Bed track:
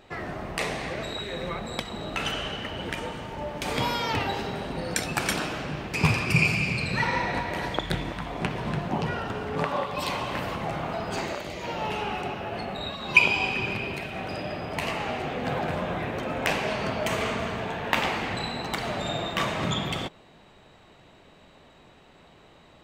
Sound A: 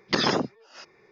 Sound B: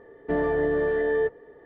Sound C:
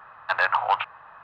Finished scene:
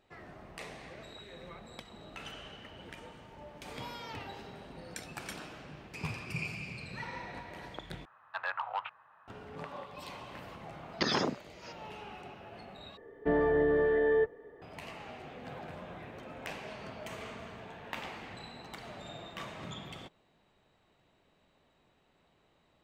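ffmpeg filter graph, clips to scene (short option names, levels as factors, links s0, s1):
-filter_complex "[0:a]volume=0.158[s0];[3:a]highpass=77[s1];[s0]asplit=3[s2][s3][s4];[s2]atrim=end=8.054[s5];[s1]atrim=end=1.23,asetpts=PTS-STARTPTS,volume=0.2[s6];[s3]atrim=start=9.276:end=12.974[s7];[2:a]atrim=end=1.65,asetpts=PTS-STARTPTS,volume=0.708[s8];[s4]atrim=start=14.616[s9];[1:a]atrim=end=1.11,asetpts=PTS-STARTPTS,volume=0.447,afade=t=in:d=0.004:c=hsin,afade=t=out:st=1.106:d=0.004:c=hsin,adelay=10880[s10];[s5][s6]acrossfade=d=0.004:c1=hsin:c2=hsin[s11];[s11][s7]acrossfade=d=0.004:c1=hsin:c2=hsin[s12];[s12][s8]acrossfade=d=0.004:c1=hsin:c2=hsin[s13];[s13][s9]acrossfade=d=0.004:c1=hsin:c2=hsin[s14];[s14][s10]amix=inputs=2:normalize=0"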